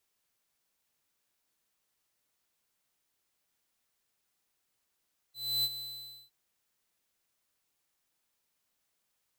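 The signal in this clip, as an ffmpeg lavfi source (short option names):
-f lavfi -i "aevalsrc='0.0376*(2*lt(mod(4020*t,1),0.5)-1)':d=0.961:s=44100,afade=t=in:d=0.3,afade=t=out:st=0.3:d=0.045:silence=0.251,afade=t=out:st=0.44:d=0.521"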